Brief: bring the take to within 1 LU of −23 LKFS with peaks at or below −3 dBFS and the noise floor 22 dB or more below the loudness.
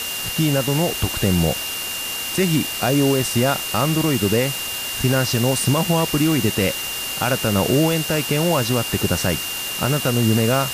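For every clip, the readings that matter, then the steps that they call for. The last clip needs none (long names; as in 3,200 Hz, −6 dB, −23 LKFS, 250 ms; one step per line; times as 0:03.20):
interfering tone 2,800 Hz; level of the tone −28 dBFS; background noise floor −27 dBFS; target noise floor −42 dBFS; integrated loudness −19.5 LKFS; sample peak −6.5 dBFS; target loudness −23.0 LKFS
→ notch filter 2,800 Hz, Q 30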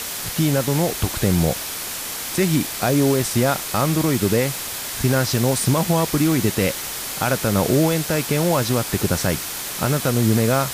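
interfering tone none found; background noise floor −29 dBFS; target noise floor −42 dBFS
→ noise reduction from a noise print 13 dB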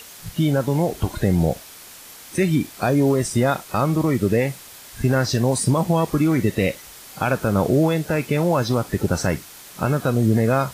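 background noise floor −42 dBFS; target noise floor −43 dBFS
→ noise reduction from a noise print 6 dB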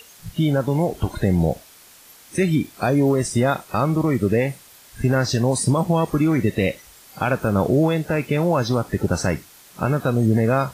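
background noise floor −48 dBFS; integrated loudness −21.0 LKFS; sample peak −8.0 dBFS; target loudness −23.0 LKFS
→ level −2 dB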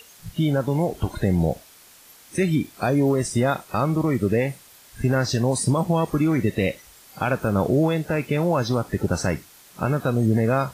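integrated loudness −23.0 LKFS; sample peak −10.0 dBFS; background noise floor −50 dBFS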